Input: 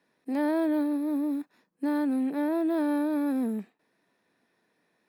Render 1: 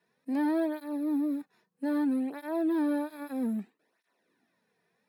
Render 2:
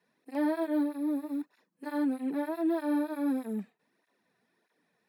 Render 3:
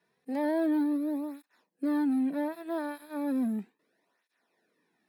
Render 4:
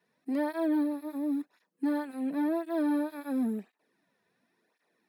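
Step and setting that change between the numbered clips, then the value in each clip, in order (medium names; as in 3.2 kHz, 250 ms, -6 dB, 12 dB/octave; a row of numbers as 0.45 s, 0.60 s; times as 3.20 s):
cancelling through-zero flanger, nulls at: 0.62 Hz, 1.6 Hz, 0.35 Hz, 0.94 Hz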